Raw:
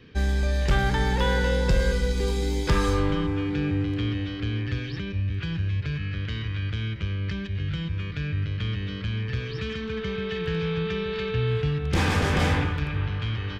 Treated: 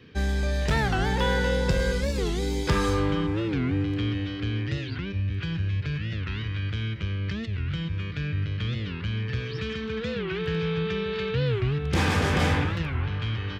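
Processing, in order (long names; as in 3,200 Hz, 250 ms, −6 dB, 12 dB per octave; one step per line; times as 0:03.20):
high-pass filter 61 Hz
wow of a warped record 45 rpm, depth 250 cents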